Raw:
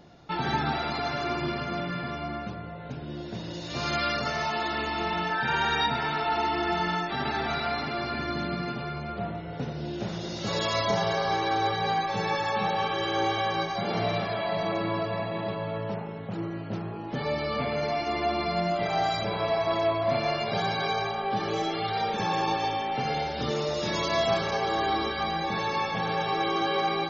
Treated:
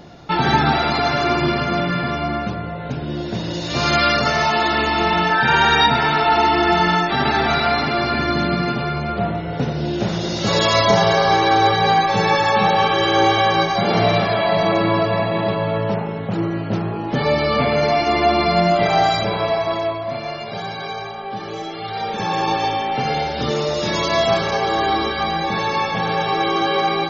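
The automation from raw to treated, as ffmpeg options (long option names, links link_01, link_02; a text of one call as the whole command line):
ffmpeg -i in.wav -af "volume=19.5dB,afade=type=out:start_time=18.84:duration=1.23:silence=0.266073,afade=type=in:start_time=21.76:duration=0.83:silence=0.398107" out.wav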